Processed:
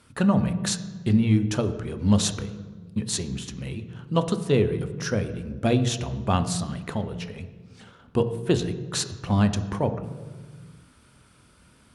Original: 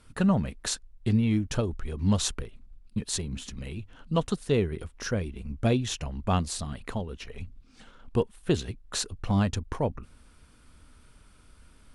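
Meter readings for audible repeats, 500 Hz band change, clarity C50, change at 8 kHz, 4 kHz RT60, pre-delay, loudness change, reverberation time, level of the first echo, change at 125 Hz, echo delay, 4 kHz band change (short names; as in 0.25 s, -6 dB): none, +4.0 dB, 12.0 dB, +3.0 dB, 0.95 s, 3 ms, +4.0 dB, 1.5 s, none, +4.0 dB, none, +3.0 dB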